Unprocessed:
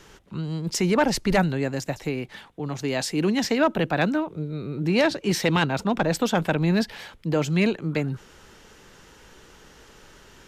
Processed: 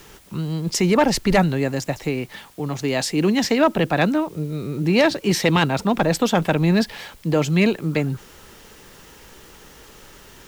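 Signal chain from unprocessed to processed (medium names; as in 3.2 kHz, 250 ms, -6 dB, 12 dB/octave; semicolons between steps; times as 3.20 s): band-stop 1.5 kHz, Q 17; in parallel at -4.5 dB: word length cut 8-bit, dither triangular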